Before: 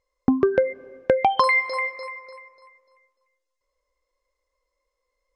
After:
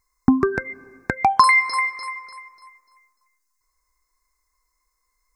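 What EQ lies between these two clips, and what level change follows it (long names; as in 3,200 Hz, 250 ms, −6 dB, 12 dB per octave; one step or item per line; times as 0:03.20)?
high-shelf EQ 4,900 Hz +12 dB
phaser with its sweep stopped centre 1,300 Hz, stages 4
+6.5 dB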